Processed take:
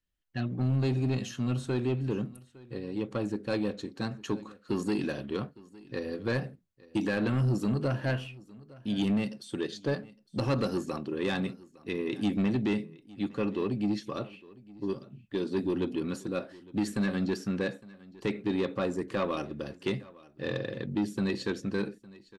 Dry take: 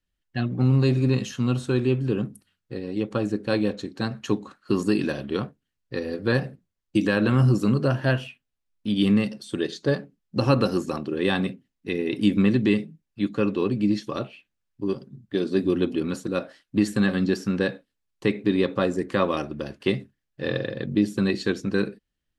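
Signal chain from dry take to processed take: saturation -16.5 dBFS, distortion -14 dB; delay 859 ms -21.5 dB; trim -5 dB

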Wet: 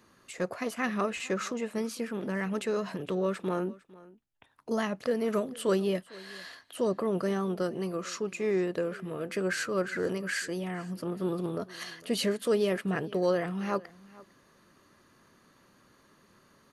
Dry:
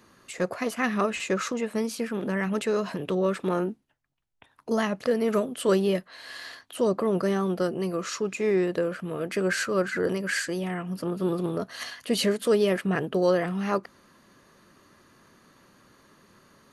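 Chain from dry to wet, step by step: delay 453 ms -21.5 dB; trim -4.5 dB

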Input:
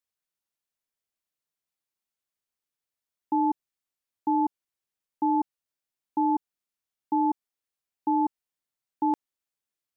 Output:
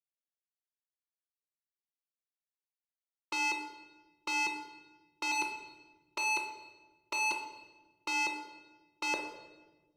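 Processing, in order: gate with hold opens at -26 dBFS; high-pass 480 Hz 24 dB/octave; 5.31–7.31 s: comb 5 ms, depth 95%; peak limiter -25 dBFS, peak gain reduction 4 dB; waveshaping leveller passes 3; Butterworth band-stop 800 Hz, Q 2.5; reverberation RT60 1.2 s, pre-delay 5 ms, DRR 1.5 dB; trim +3 dB

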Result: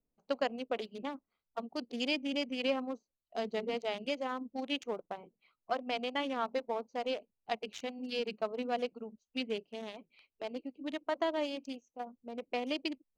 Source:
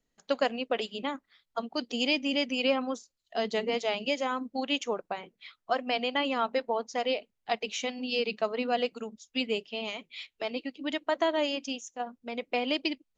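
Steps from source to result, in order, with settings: local Wiener filter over 25 samples; trim -5 dB

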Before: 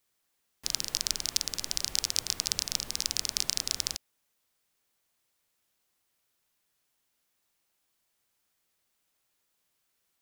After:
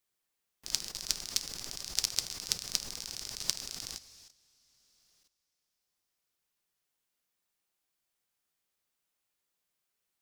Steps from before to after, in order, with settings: two-slope reverb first 0.6 s, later 4 s, from -20 dB, DRR 6.5 dB; level held to a coarse grid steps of 14 dB

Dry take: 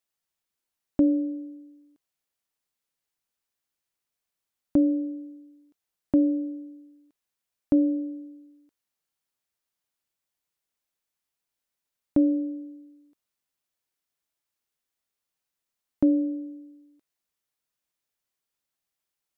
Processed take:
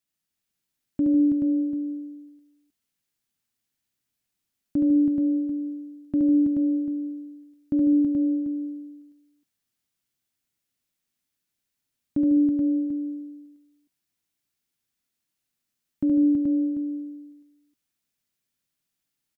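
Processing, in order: peak limiter -20.5 dBFS, peak gain reduction 8.5 dB; ten-band graphic EQ 125 Hz +5 dB, 250 Hz +6 dB, 500 Hz -5 dB, 1 kHz -5 dB; multi-tap echo 71/150/205/326/429/741 ms -3.5/-9.5/-16.5/-4.5/-4/-12 dB

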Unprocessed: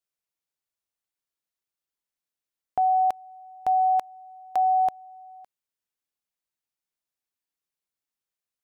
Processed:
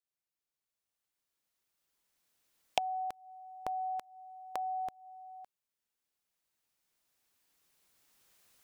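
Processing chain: recorder AGC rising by 8.5 dB/s; dynamic bell 760 Hz, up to -8 dB, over -33 dBFS, Q 1.6; wavefolder -8.5 dBFS; trim -7.5 dB

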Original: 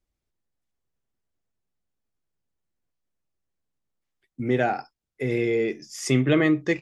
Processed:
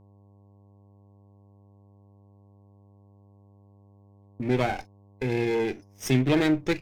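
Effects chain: comb filter that takes the minimum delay 0.34 ms; gate -36 dBFS, range -28 dB; mains buzz 100 Hz, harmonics 11, -54 dBFS -7 dB/octave; trim -1.5 dB

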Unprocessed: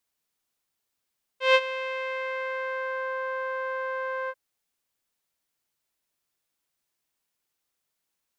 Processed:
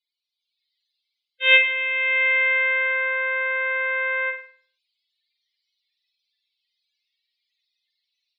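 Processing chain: graphic EQ 500/1000/2000/4000 Hz -7/-7/+6/+8 dB; level rider gain up to 9.5 dB; loudest bins only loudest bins 16; flutter echo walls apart 8.6 m, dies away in 0.46 s

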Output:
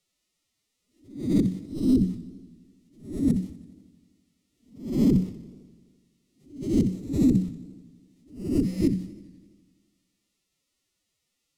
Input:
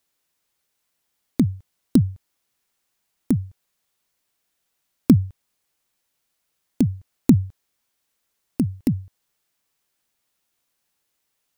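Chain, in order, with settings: reverse spectral sustain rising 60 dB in 0.46 s; Butterworth band-stop 820 Hz, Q 4.2; formant-preserving pitch shift +11.5 st; on a send: thinning echo 62 ms, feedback 45%, level -15 dB; on the sum: peak limiter -11.5 dBFS, peak gain reduction 10 dB; peaking EQ 1.1 kHz -10.5 dB 2.1 oct; in parallel at +0.5 dB: compression, threshold -37 dBFS, peak gain reduction 18.5 dB; on the sum: distance through air 54 m; modulated delay 84 ms, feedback 70%, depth 136 cents, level -18.5 dB

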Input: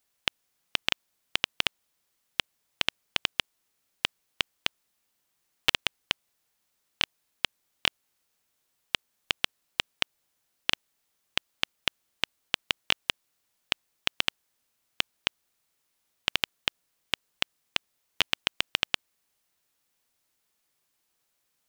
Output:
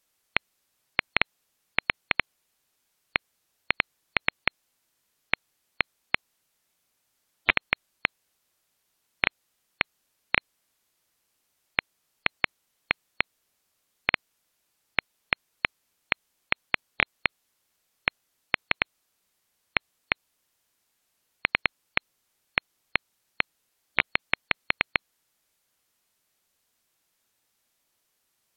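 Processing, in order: spectral gate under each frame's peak -20 dB strong; wide varispeed 0.759×; trim +1.5 dB

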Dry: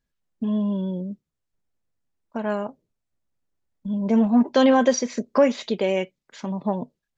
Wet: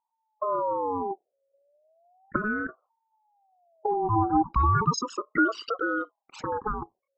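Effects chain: resonances exaggerated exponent 3; recorder AGC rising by 11 dB/s; ring modulator with a swept carrier 730 Hz, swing 25%, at 0.35 Hz; trim -2.5 dB

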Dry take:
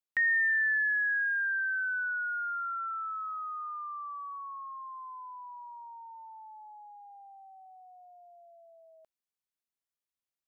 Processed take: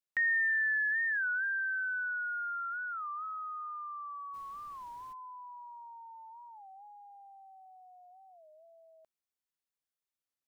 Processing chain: 4.33–5.12 s: added noise pink -61 dBFS; warped record 33 1/3 rpm, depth 160 cents; trim -2.5 dB

